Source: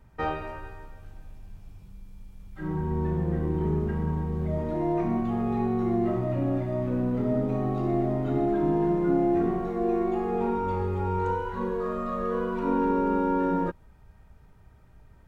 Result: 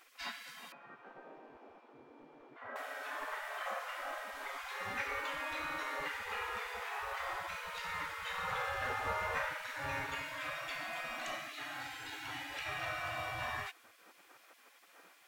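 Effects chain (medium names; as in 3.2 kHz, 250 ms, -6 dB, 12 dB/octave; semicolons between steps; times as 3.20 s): 0.72–2.76 s: Bessel low-pass 1.1 kHz, order 2; spectral gate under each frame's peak -30 dB weak; trim +12.5 dB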